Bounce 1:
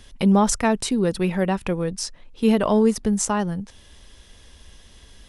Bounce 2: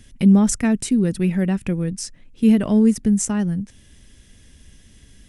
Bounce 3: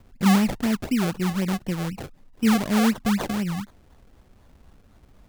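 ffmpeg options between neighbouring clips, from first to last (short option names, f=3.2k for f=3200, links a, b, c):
-af "equalizer=f=125:t=o:w=1:g=7,equalizer=f=250:t=o:w=1:g=6,equalizer=f=500:t=o:w=1:g=-4,equalizer=f=1k:t=o:w=1:g=-10,equalizer=f=2k:t=o:w=1:g=3,equalizer=f=4k:t=o:w=1:g=-6,equalizer=f=8k:t=o:w=1:g=4,volume=-1.5dB"
-af "acrusher=samples=32:mix=1:aa=0.000001:lfo=1:lforange=32:lforate=4,volume=-5dB"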